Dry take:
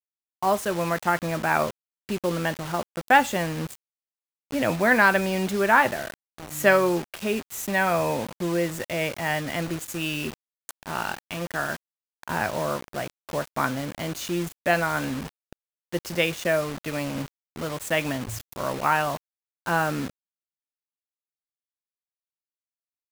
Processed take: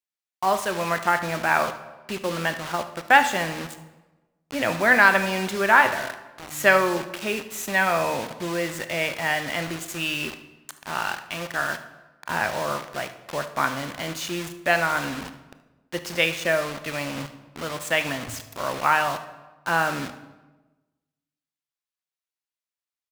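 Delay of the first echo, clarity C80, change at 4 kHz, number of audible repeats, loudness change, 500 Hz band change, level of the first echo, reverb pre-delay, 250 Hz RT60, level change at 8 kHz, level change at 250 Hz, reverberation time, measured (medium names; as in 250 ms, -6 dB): 74 ms, 14.0 dB, +3.5 dB, 1, +1.5 dB, -0.5 dB, -17.0 dB, 22 ms, 1.3 s, +1.5 dB, -3.0 dB, 1.2 s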